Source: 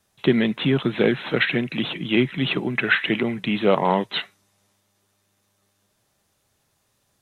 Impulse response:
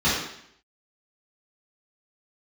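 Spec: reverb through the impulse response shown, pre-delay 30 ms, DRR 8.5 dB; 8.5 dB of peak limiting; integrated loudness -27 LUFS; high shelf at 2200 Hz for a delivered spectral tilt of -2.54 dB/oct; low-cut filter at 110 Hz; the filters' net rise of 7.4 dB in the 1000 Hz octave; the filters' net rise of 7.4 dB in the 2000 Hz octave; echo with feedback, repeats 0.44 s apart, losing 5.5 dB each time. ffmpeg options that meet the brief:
-filter_complex "[0:a]highpass=110,equalizer=f=1k:t=o:g=7,equalizer=f=2k:t=o:g=5.5,highshelf=f=2.2k:g=3,alimiter=limit=-7dB:level=0:latency=1,aecho=1:1:440|880|1320|1760|2200|2640|3080:0.531|0.281|0.149|0.079|0.0419|0.0222|0.0118,asplit=2[a][b];[1:a]atrim=start_sample=2205,adelay=30[c];[b][c]afir=irnorm=-1:irlink=0,volume=-25.5dB[d];[a][d]amix=inputs=2:normalize=0,volume=-8dB"

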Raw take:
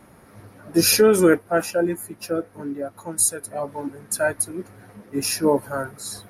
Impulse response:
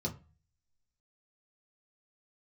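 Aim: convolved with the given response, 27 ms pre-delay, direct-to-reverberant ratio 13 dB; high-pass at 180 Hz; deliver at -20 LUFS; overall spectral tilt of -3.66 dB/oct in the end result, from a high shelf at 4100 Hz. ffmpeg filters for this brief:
-filter_complex "[0:a]highpass=180,highshelf=f=4.1k:g=-4.5,asplit=2[a][b];[1:a]atrim=start_sample=2205,adelay=27[c];[b][c]afir=irnorm=-1:irlink=0,volume=-15.5dB[d];[a][d]amix=inputs=2:normalize=0,volume=2.5dB"

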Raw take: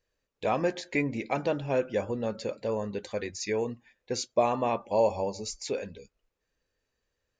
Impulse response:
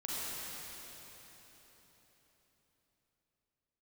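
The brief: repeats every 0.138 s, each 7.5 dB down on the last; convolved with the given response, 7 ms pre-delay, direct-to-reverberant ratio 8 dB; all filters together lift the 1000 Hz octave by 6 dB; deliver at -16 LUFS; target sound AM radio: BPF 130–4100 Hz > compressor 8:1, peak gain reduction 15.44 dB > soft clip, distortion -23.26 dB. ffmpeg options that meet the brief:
-filter_complex "[0:a]equalizer=f=1k:t=o:g=8,aecho=1:1:138|276|414|552|690:0.422|0.177|0.0744|0.0312|0.0131,asplit=2[a][b];[1:a]atrim=start_sample=2205,adelay=7[c];[b][c]afir=irnorm=-1:irlink=0,volume=-12dB[d];[a][d]amix=inputs=2:normalize=0,highpass=130,lowpass=4.1k,acompressor=threshold=-31dB:ratio=8,asoftclip=threshold=-23dB,volume=20.5dB"

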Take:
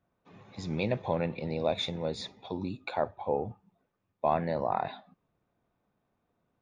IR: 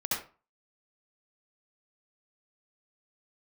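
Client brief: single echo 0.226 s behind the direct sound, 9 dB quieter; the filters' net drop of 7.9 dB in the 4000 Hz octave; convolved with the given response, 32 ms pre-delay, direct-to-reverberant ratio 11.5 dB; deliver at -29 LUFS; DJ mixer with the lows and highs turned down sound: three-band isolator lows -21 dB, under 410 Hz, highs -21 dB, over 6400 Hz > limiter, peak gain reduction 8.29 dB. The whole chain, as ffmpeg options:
-filter_complex "[0:a]equalizer=f=4k:t=o:g=-8,aecho=1:1:226:0.355,asplit=2[a][b];[1:a]atrim=start_sample=2205,adelay=32[c];[b][c]afir=irnorm=-1:irlink=0,volume=-18dB[d];[a][d]amix=inputs=2:normalize=0,acrossover=split=410 6400:gain=0.0891 1 0.0891[e][f][g];[e][f][g]amix=inputs=3:normalize=0,volume=9dB,alimiter=limit=-14.5dB:level=0:latency=1"

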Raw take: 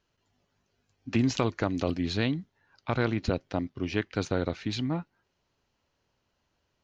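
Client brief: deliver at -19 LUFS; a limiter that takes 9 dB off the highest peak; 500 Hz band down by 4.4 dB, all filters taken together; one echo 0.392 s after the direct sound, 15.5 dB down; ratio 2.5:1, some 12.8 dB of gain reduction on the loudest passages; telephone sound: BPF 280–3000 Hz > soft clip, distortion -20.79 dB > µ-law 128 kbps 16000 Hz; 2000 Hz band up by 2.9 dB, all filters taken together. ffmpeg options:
-af "equalizer=f=500:t=o:g=-5,equalizer=f=2k:t=o:g=5,acompressor=threshold=-41dB:ratio=2.5,alimiter=level_in=6dB:limit=-24dB:level=0:latency=1,volume=-6dB,highpass=280,lowpass=3k,aecho=1:1:392:0.168,asoftclip=threshold=-34dB,volume=29.5dB" -ar 16000 -c:a pcm_mulaw

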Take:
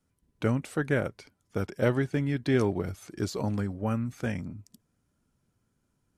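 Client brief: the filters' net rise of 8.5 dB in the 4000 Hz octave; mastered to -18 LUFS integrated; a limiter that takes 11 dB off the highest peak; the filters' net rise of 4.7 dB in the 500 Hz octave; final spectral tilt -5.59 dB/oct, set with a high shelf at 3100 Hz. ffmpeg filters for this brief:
-af "equalizer=f=500:t=o:g=5.5,highshelf=f=3.1k:g=5.5,equalizer=f=4k:t=o:g=6.5,volume=13.5dB,alimiter=limit=-5dB:level=0:latency=1"

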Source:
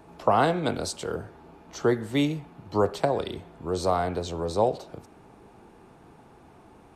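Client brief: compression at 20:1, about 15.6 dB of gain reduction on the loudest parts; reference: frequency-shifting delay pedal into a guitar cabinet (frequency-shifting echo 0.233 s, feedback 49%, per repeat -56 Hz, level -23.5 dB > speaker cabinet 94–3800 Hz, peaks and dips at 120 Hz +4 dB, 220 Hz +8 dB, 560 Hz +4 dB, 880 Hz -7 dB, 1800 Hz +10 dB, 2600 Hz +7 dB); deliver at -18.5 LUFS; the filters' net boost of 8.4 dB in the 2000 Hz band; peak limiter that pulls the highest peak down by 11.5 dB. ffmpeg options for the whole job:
-filter_complex "[0:a]equalizer=f=2k:t=o:g=3.5,acompressor=threshold=-32dB:ratio=20,alimiter=level_in=5dB:limit=-24dB:level=0:latency=1,volume=-5dB,asplit=4[a][b][c][d];[b]adelay=233,afreqshift=-56,volume=-23.5dB[e];[c]adelay=466,afreqshift=-112,volume=-29.7dB[f];[d]adelay=699,afreqshift=-168,volume=-35.9dB[g];[a][e][f][g]amix=inputs=4:normalize=0,highpass=94,equalizer=f=120:t=q:w=4:g=4,equalizer=f=220:t=q:w=4:g=8,equalizer=f=560:t=q:w=4:g=4,equalizer=f=880:t=q:w=4:g=-7,equalizer=f=1.8k:t=q:w=4:g=10,equalizer=f=2.6k:t=q:w=4:g=7,lowpass=f=3.8k:w=0.5412,lowpass=f=3.8k:w=1.3066,volume=21dB"

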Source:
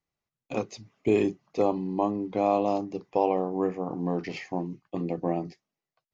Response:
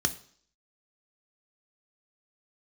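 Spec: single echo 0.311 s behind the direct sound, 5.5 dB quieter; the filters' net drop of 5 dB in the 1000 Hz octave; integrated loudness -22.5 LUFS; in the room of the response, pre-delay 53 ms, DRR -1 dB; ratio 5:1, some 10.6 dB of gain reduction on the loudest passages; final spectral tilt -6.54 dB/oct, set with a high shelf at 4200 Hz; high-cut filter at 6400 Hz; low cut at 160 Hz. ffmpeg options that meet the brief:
-filter_complex "[0:a]highpass=160,lowpass=6.4k,equalizer=f=1k:t=o:g=-7.5,highshelf=f=4.2k:g=-3.5,acompressor=threshold=-32dB:ratio=5,aecho=1:1:311:0.531,asplit=2[a][b];[1:a]atrim=start_sample=2205,adelay=53[c];[b][c]afir=irnorm=-1:irlink=0,volume=-6.5dB[d];[a][d]amix=inputs=2:normalize=0,volume=9dB"

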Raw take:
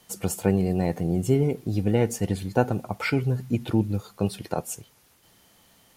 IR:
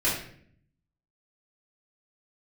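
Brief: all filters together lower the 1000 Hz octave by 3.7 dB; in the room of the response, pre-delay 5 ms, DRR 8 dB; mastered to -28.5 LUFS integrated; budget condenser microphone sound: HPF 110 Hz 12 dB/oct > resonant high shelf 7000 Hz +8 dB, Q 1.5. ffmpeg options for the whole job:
-filter_complex "[0:a]equalizer=f=1k:t=o:g=-5.5,asplit=2[a][b];[1:a]atrim=start_sample=2205,adelay=5[c];[b][c]afir=irnorm=-1:irlink=0,volume=-20dB[d];[a][d]amix=inputs=2:normalize=0,highpass=110,highshelf=f=7k:t=q:w=1.5:g=8,volume=-3dB"

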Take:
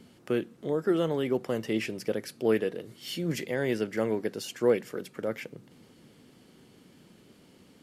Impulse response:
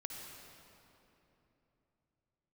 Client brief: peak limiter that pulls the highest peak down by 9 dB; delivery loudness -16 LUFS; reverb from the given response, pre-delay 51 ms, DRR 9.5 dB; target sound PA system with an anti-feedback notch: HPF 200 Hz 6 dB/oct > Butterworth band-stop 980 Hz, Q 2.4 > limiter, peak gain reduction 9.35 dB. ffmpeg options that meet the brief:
-filter_complex "[0:a]alimiter=limit=-21dB:level=0:latency=1,asplit=2[a][b];[1:a]atrim=start_sample=2205,adelay=51[c];[b][c]afir=irnorm=-1:irlink=0,volume=-8dB[d];[a][d]amix=inputs=2:normalize=0,highpass=f=200:p=1,asuperstop=centerf=980:order=8:qfactor=2.4,volume=22.5dB,alimiter=limit=-6dB:level=0:latency=1"

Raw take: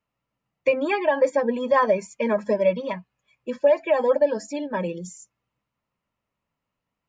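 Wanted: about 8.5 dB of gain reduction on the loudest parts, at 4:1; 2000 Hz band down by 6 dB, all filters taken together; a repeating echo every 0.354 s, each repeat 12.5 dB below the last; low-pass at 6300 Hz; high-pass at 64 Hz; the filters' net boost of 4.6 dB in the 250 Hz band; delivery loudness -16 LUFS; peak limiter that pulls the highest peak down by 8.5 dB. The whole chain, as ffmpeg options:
-af "highpass=64,lowpass=6.3k,equalizer=f=250:t=o:g=5.5,equalizer=f=2k:t=o:g=-7.5,acompressor=threshold=-24dB:ratio=4,alimiter=limit=-23dB:level=0:latency=1,aecho=1:1:354|708|1062:0.237|0.0569|0.0137,volume=16dB"

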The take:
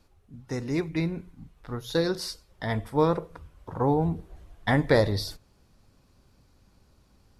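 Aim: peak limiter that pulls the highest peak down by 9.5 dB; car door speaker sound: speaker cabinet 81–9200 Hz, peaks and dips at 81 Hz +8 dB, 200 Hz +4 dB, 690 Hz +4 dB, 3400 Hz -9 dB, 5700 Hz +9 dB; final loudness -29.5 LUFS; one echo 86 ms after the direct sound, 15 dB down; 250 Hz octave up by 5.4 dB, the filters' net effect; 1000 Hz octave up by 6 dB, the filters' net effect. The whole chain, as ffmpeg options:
-af "equalizer=f=250:t=o:g=6,equalizer=f=1k:t=o:g=5.5,alimiter=limit=-15dB:level=0:latency=1,highpass=81,equalizer=f=81:t=q:w=4:g=8,equalizer=f=200:t=q:w=4:g=4,equalizer=f=690:t=q:w=4:g=4,equalizer=f=3.4k:t=q:w=4:g=-9,equalizer=f=5.7k:t=q:w=4:g=9,lowpass=f=9.2k:w=0.5412,lowpass=f=9.2k:w=1.3066,aecho=1:1:86:0.178,volume=-2.5dB"

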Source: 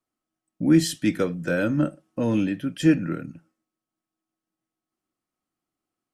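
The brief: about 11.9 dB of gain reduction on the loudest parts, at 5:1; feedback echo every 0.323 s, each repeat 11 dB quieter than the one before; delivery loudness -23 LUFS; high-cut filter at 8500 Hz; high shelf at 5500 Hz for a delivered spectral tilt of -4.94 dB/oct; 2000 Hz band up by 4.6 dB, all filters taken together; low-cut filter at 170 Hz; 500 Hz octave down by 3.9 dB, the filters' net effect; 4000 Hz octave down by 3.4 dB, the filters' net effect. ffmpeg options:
-af "highpass=170,lowpass=8.5k,equalizer=f=500:t=o:g=-5.5,equalizer=f=2k:t=o:g=8.5,equalizer=f=4k:t=o:g=-5,highshelf=f=5.5k:g=-5,acompressor=threshold=-28dB:ratio=5,aecho=1:1:323|646|969:0.282|0.0789|0.0221,volume=10dB"

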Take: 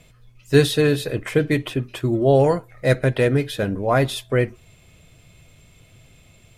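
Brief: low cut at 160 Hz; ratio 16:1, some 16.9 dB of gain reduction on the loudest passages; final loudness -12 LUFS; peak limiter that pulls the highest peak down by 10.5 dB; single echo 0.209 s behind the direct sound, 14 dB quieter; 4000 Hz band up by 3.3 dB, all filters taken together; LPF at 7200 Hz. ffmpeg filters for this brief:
-af "highpass=160,lowpass=7.2k,equalizer=f=4k:t=o:g=4,acompressor=threshold=-26dB:ratio=16,alimiter=level_in=0.5dB:limit=-24dB:level=0:latency=1,volume=-0.5dB,aecho=1:1:209:0.2,volume=22.5dB"

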